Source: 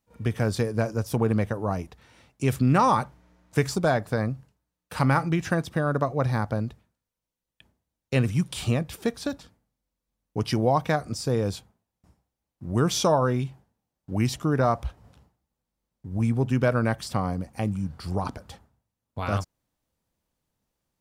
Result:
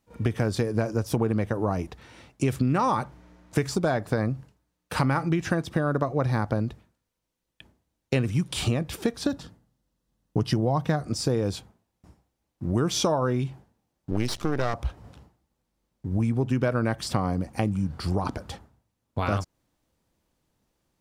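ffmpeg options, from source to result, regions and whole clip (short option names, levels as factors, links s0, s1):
-filter_complex "[0:a]asettb=1/sr,asplit=3[s0][s1][s2];[s0]atrim=end=9.234[s3];[s1]atrim=start=9.23:end=11.05,asetpts=PTS-STARTPTS,afade=t=in:d=0.004:c=qsin,afade=t=out:st=1.816:d=0.004:c=qsin,equalizer=f=140:w=1.3:g=7,bandreject=f=2300:w=8.6[s4];[s2]atrim=start=11.046[s5];[s3][s4]acrossfade=d=0.004:c1=hsin:c2=qsin[s6];[s6][s5]acrossfade=d=0.004:c1=qsin:c2=hsin,asettb=1/sr,asplit=3[s7][s8][s9];[s7]atrim=end=14.114[s10];[s8]atrim=start=14.11:end=14.74,asetpts=PTS-STARTPTS,afade=t=in:d=0.004:c=qsin,afade=t=out:st=0.626:d=0.004:c=qsin,equalizer=f=4300:w=1.3:g=10.5,aeval=exprs='max(val(0),0)':c=same[s11];[s9]atrim=start=14.736[s12];[s10][s11]acrossfade=d=0.004:c1=hsin:c2=qsin[s13];[s13][s12]acrossfade=d=0.004:c1=qsin:c2=hsin,equalizer=f=330:w=2.7:g=4,acompressor=threshold=0.0398:ratio=4,highshelf=f=11000:g=-6.5,volume=2"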